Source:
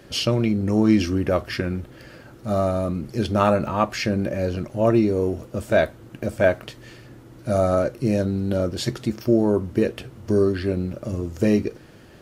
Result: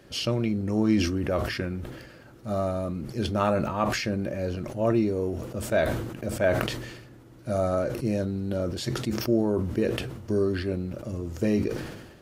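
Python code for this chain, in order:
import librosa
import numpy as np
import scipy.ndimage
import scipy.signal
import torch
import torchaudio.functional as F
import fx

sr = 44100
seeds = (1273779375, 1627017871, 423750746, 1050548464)

y = fx.sustainer(x, sr, db_per_s=48.0)
y = y * librosa.db_to_amplitude(-6.0)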